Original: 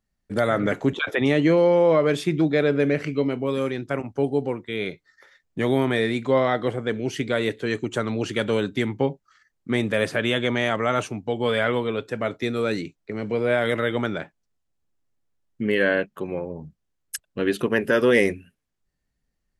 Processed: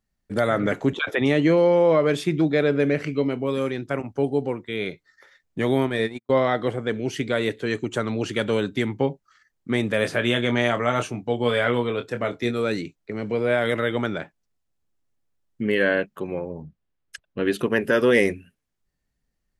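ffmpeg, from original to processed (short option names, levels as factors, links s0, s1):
-filter_complex "[0:a]asplit=3[s0][s1][s2];[s0]afade=t=out:st=5.81:d=0.02[s3];[s1]agate=range=0.00251:threshold=0.0708:ratio=16:release=100:detection=peak,afade=t=in:st=5.81:d=0.02,afade=t=out:st=6.42:d=0.02[s4];[s2]afade=t=in:st=6.42:d=0.02[s5];[s3][s4][s5]amix=inputs=3:normalize=0,asettb=1/sr,asplit=3[s6][s7][s8];[s6]atrim=end=10.024[s9];[s7]atrim=start=10.02:end=12.51,asetpts=PTS-STARTPTS,afade=t=in:d=0.004:c=qsin,afade=t=out:st=2.486:d=0.004:c=qsin,asplit=2[s10][s11];[s11]adelay=25,volume=0.398[s12];[s10][s12]amix=inputs=2:normalize=0,atrim=end_sample=109809[s13];[s8]atrim=start=12.506[s14];[s9][s13]acrossfade=d=0.004:c1=hsin:c2=qsin[s15];[s15][s14]acrossfade=d=0.004:c1=qsin:c2=hsin,asettb=1/sr,asplit=3[s16][s17][s18];[s16]atrim=end=16.624[s19];[s17]atrim=start=16.62:end=17.45,asetpts=PTS-STARTPTS,afade=t=in:d=0.004:c=qsin,afade=t=out:st=0.826:d=0.004:c=qsin,lowpass=3600[s20];[s18]atrim=start=17.446[s21];[s19][s20]acrossfade=d=0.004:c1=hsin:c2=qsin[s22];[s22][s21]acrossfade=d=0.004:c1=qsin:c2=hsin"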